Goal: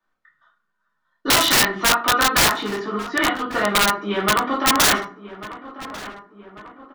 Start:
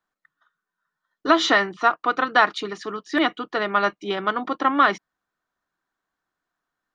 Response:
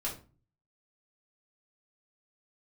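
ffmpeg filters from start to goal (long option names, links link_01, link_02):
-filter_complex "[0:a]asplit=3[link_01][link_02][link_03];[link_01]afade=type=out:start_time=2.42:duration=0.02[link_04];[link_02]highshelf=frequency=3000:gain=-8,afade=type=in:start_time=2.42:duration=0.02,afade=type=out:start_time=4.16:duration=0.02[link_05];[link_03]afade=type=in:start_time=4.16:duration=0.02[link_06];[link_04][link_05][link_06]amix=inputs=3:normalize=0,acrossover=split=170|840|3300[link_07][link_08][link_09][link_10];[link_08]acompressor=threshold=-30dB:ratio=16[link_11];[link_10]highshelf=frequency=6800:gain=-10[link_12];[link_07][link_11][link_09][link_12]amix=inputs=4:normalize=0[link_13];[1:a]atrim=start_sample=2205,asetrate=37485,aresample=44100[link_14];[link_13][link_14]afir=irnorm=-1:irlink=0,aeval=exprs='(mod(3.98*val(0)+1,2)-1)/3.98':channel_layout=same,asplit=2[link_15][link_16];[link_16]adelay=1144,lowpass=frequency=2300:poles=1,volume=-15dB,asplit=2[link_17][link_18];[link_18]adelay=1144,lowpass=frequency=2300:poles=1,volume=0.54,asplit=2[link_19][link_20];[link_20]adelay=1144,lowpass=frequency=2300:poles=1,volume=0.54,asplit=2[link_21][link_22];[link_22]adelay=1144,lowpass=frequency=2300:poles=1,volume=0.54,asplit=2[link_23][link_24];[link_24]adelay=1144,lowpass=frequency=2300:poles=1,volume=0.54[link_25];[link_15][link_17][link_19][link_21][link_23][link_25]amix=inputs=6:normalize=0,volume=2.5dB"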